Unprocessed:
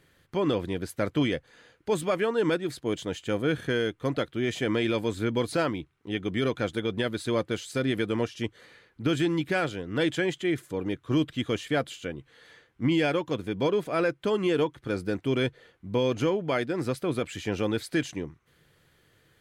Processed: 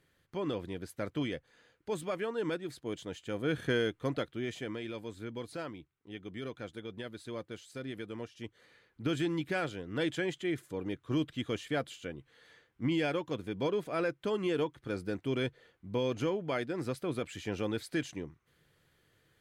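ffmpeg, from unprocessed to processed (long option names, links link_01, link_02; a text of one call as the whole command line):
ffmpeg -i in.wav -af "volume=5dB,afade=type=in:start_time=3.33:duration=0.37:silence=0.473151,afade=type=out:start_time=3.7:duration=1.08:silence=0.266073,afade=type=in:start_time=8.34:duration=0.67:silence=0.421697" out.wav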